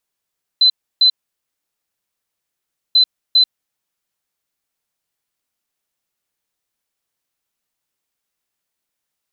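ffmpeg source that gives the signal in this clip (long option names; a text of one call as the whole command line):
ffmpeg -f lavfi -i "aevalsrc='0.422*sin(2*PI*4040*t)*clip(min(mod(mod(t,2.34),0.4),0.09-mod(mod(t,2.34),0.4))/0.005,0,1)*lt(mod(t,2.34),0.8)':duration=4.68:sample_rate=44100" out.wav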